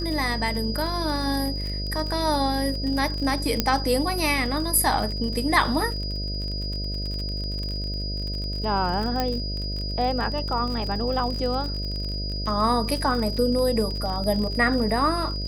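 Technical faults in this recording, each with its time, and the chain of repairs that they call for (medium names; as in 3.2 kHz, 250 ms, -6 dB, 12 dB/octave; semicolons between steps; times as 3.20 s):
buzz 50 Hz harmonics 13 -30 dBFS
crackle 41 per s -29 dBFS
whine 4.9 kHz -32 dBFS
3.60 s: pop -5 dBFS
9.20 s: pop -10 dBFS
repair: de-click; band-stop 4.9 kHz, Q 30; de-hum 50 Hz, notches 13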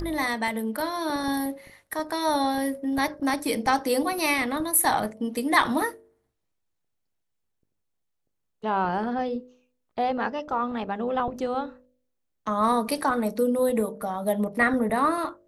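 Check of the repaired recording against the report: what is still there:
nothing left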